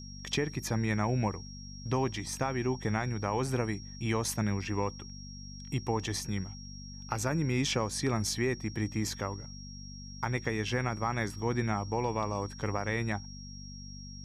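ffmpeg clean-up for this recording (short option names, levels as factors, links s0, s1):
-af "bandreject=f=48.4:t=h:w=4,bandreject=f=96.8:t=h:w=4,bandreject=f=145.2:t=h:w=4,bandreject=f=193.6:t=h:w=4,bandreject=f=242:t=h:w=4,bandreject=f=5600:w=30"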